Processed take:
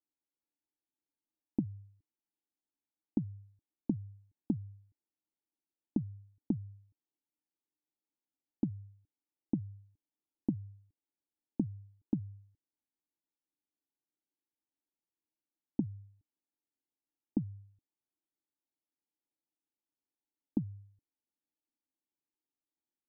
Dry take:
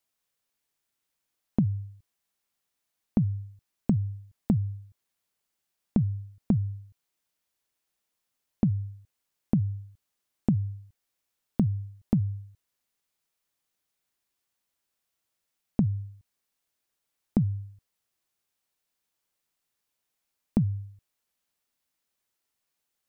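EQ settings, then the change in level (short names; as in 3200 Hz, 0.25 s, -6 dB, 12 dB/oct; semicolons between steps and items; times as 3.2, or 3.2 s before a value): vocal tract filter u; low shelf 480 Hz -11 dB; bell 850 Hz -5 dB; +9.0 dB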